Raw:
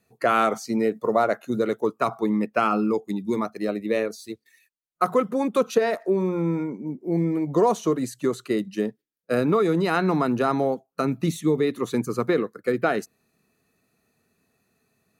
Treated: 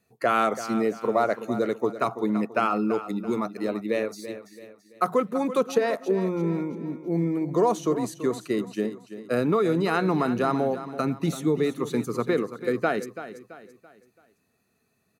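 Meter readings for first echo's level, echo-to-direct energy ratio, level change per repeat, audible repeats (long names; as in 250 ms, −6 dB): −12.5 dB, −12.0 dB, −8.0 dB, 3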